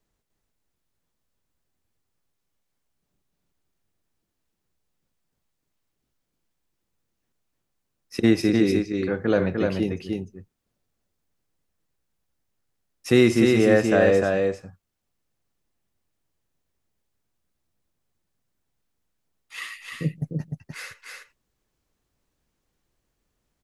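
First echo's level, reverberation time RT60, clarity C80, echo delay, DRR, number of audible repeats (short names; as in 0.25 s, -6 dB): -3.5 dB, none, none, 0.301 s, none, 1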